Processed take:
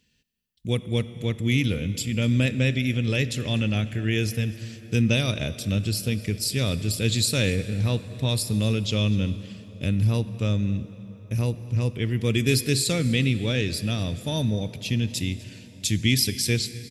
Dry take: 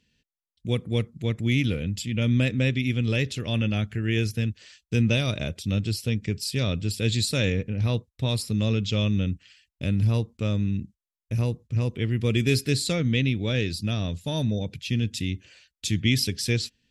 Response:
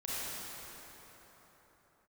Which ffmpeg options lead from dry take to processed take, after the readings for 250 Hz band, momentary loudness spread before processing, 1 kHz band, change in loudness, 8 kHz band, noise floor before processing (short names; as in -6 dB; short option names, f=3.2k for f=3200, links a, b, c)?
+1.0 dB, 7 LU, +1.0 dB, +1.0 dB, +5.5 dB, under -85 dBFS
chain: -filter_complex "[0:a]highshelf=f=8.9k:g=11.5,aecho=1:1:248:0.0841,asplit=2[a][b];[1:a]atrim=start_sample=2205[c];[b][c]afir=irnorm=-1:irlink=0,volume=-17.5dB[d];[a][d]amix=inputs=2:normalize=0"